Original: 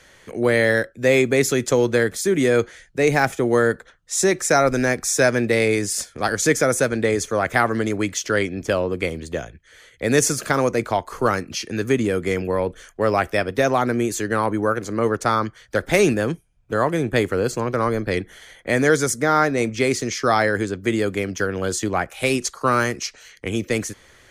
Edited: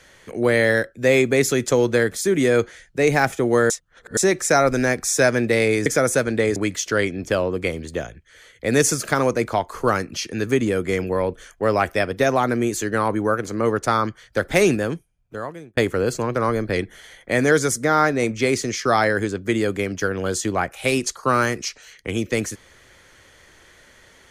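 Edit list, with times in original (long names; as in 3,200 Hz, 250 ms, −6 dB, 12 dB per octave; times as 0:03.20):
0:03.70–0:04.17: reverse
0:05.86–0:06.51: remove
0:07.21–0:07.94: remove
0:16.02–0:17.15: fade out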